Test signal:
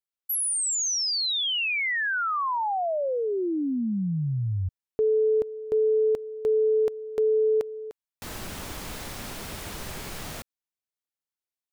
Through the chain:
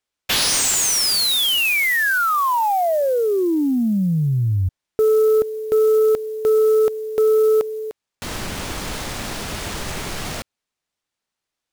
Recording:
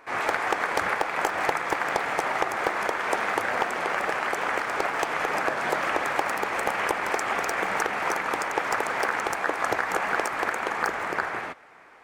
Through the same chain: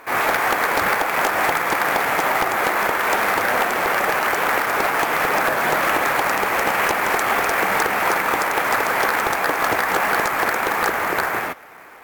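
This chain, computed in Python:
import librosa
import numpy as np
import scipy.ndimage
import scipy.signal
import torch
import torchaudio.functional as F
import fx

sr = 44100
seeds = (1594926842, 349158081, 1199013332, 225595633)

y = fx.sample_hold(x, sr, seeds[0], rate_hz=15000.0, jitter_pct=20)
y = fx.fold_sine(y, sr, drive_db=4, ceiling_db=-13.0)
y = y * librosa.db_to_amplitude(1.0)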